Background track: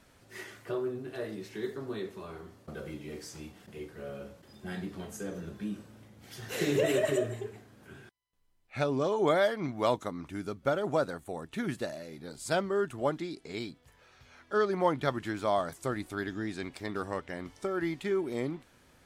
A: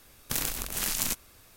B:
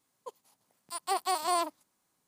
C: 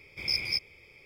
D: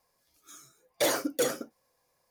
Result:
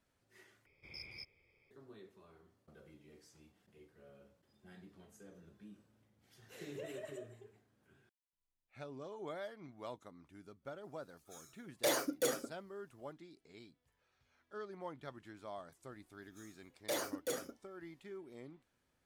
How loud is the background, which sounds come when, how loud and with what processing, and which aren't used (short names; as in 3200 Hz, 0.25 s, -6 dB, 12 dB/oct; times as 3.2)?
background track -19 dB
0.66 replace with C -14.5 dB + high shelf 2800 Hz -9.5 dB
10.83 add D -6.5 dB
15.88 add D -11.5 dB
not used: A, B